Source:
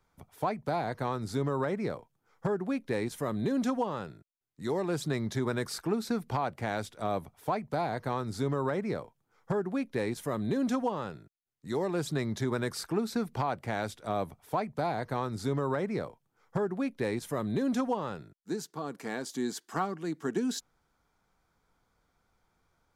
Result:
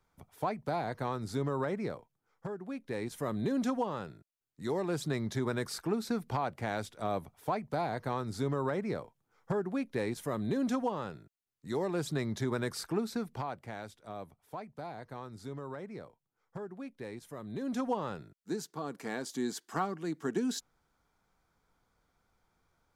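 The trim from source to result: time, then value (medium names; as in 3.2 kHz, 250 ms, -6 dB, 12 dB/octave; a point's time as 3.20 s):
1.79 s -2.5 dB
2.57 s -10 dB
3.26 s -2 dB
12.96 s -2 dB
13.94 s -11.5 dB
17.42 s -11.5 dB
17.92 s -1.5 dB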